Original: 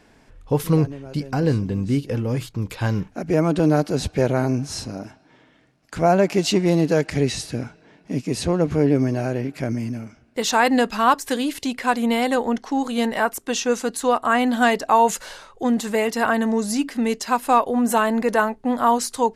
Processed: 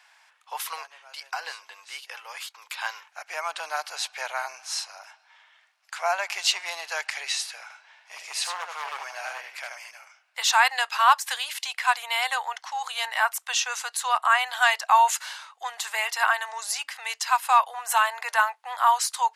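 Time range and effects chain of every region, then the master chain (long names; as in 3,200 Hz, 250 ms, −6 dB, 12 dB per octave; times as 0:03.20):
0:07.62–0:09.91: single-tap delay 79 ms −5 dB + hard clipping −15.5 dBFS
whole clip: Butterworth high-pass 820 Hz 36 dB per octave; parametric band 2,900 Hz +3 dB 1.4 octaves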